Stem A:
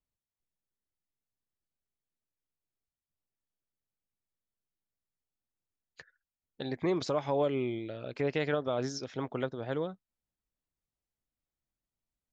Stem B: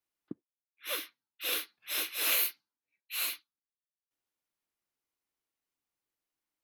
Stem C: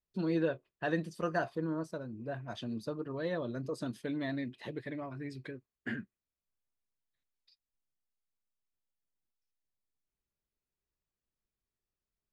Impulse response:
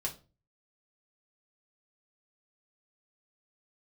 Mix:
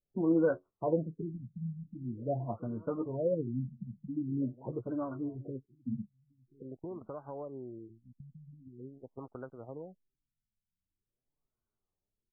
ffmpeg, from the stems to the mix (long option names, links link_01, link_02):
-filter_complex "[0:a]aeval=exprs='val(0)*gte(abs(val(0)),0.002)':channel_layout=same,agate=range=-22dB:threshold=-38dB:ratio=16:detection=peak,acompressor=threshold=-46dB:ratio=2.5,volume=0dB[link_01];[1:a]highpass=490,acompressor=threshold=-41dB:ratio=3,volume=2.5dB,asplit=2[link_02][link_03];[link_03]volume=-11dB[link_04];[2:a]acontrast=35,flanger=delay=6.6:depth=4.7:regen=27:speed=0.88:shape=triangular,volume=2dB,asplit=2[link_05][link_06];[link_06]volume=-23dB[link_07];[link_04][link_07]amix=inputs=2:normalize=0,aecho=0:1:1034:1[link_08];[link_01][link_02][link_05][link_08]amix=inputs=4:normalize=0,afftfilt=real='re*lt(b*sr/1024,220*pow(1600/220,0.5+0.5*sin(2*PI*0.45*pts/sr)))':imag='im*lt(b*sr/1024,220*pow(1600/220,0.5+0.5*sin(2*PI*0.45*pts/sr)))':win_size=1024:overlap=0.75"